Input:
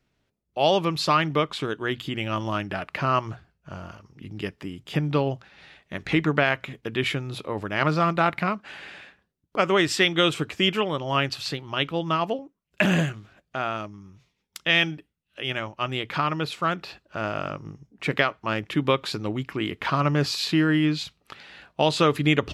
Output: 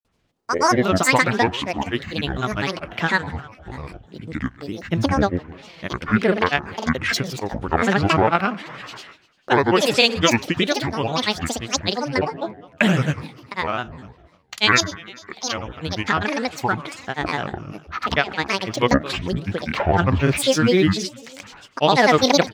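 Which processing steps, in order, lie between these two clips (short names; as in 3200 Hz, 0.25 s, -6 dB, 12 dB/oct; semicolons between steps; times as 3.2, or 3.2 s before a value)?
feedback echo 0.129 s, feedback 58%, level -18.5 dB; wow and flutter 17 cents; grains, pitch spread up and down by 12 st; gain +5.5 dB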